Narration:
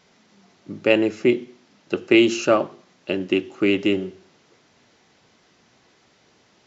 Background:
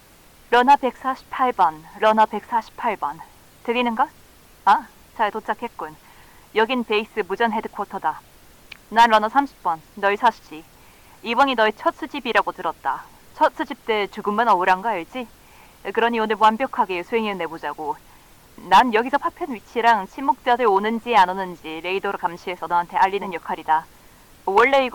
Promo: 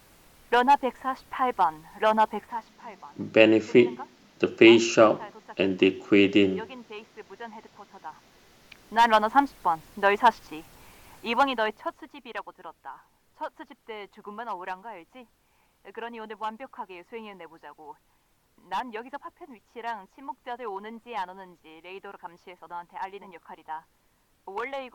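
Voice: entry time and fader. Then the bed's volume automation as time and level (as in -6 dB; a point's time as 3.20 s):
2.50 s, 0.0 dB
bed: 2.39 s -6 dB
2.78 s -20.5 dB
7.88 s -20.5 dB
9.33 s -2.5 dB
11.17 s -2.5 dB
12.27 s -18 dB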